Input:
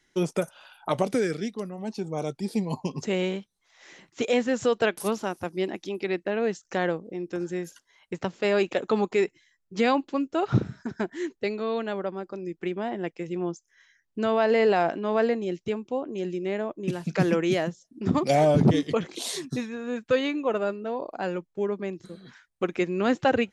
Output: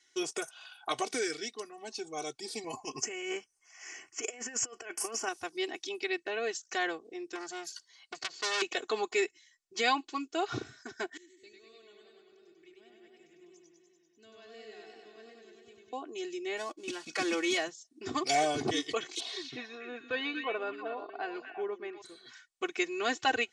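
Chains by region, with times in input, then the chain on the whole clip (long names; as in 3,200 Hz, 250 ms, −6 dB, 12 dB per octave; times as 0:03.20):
0:02.64–0:05.29: compressor whose output falls as the input rises −29 dBFS, ratio −0.5 + Butterworth band-reject 3,800 Hz, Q 1.8
0:07.35–0:08.62: parametric band 4,500 Hz +14 dB 0.21 octaves + saturating transformer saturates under 3,200 Hz
0:11.17–0:15.93: guitar amp tone stack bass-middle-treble 10-0-1 + feedback echo with a swinging delay time 98 ms, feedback 76%, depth 88 cents, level −3 dB
0:16.57–0:17.58: gap after every zero crossing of 0.063 ms + parametric band 11,000 Hz −5.5 dB 0.93 octaves + comb filter 3.6 ms, depth 52%
0:19.20–0:22.02: high-frequency loss of the air 330 metres + echo through a band-pass that steps 119 ms, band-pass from 5,600 Hz, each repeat −1.4 octaves, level −0.5 dB
whole clip: low-pass filter 8,100 Hz 24 dB per octave; spectral tilt +4 dB per octave; comb filter 2.7 ms, depth 92%; level −7 dB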